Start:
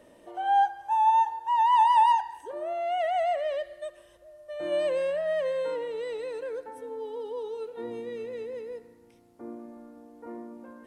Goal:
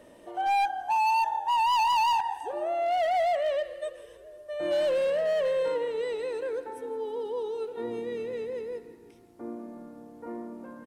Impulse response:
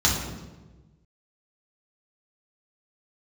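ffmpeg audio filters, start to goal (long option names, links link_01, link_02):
-filter_complex "[0:a]asplit=6[link_01][link_02][link_03][link_04][link_05][link_06];[link_02]adelay=165,afreqshift=-37,volume=-17dB[link_07];[link_03]adelay=330,afreqshift=-74,volume=-21.9dB[link_08];[link_04]adelay=495,afreqshift=-111,volume=-26.8dB[link_09];[link_05]adelay=660,afreqshift=-148,volume=-31.6dB[link_10];[link_06]adelay=825,afreqshift=-185,volume=-36.5dB[link_11];[link_01][link_07][link_08][link_09][link_10][link_11]amix=inputs=6:normalize=0,asoftclip=type=hard:threshold=-25dB,volume=2.5dB"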